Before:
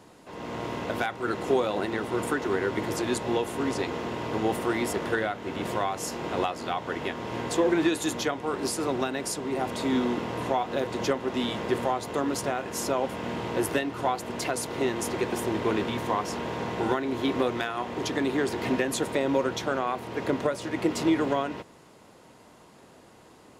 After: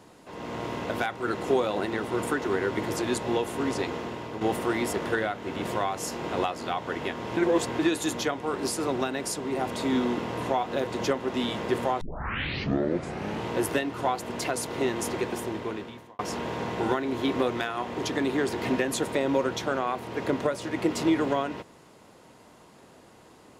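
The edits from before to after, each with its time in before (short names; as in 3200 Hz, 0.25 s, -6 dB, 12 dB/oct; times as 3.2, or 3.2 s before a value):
3.87–4.41 fade out, to -8 dB
7.37–7.79 reverse
12.01 tape start 1.45 s
15.08–16.19 fade out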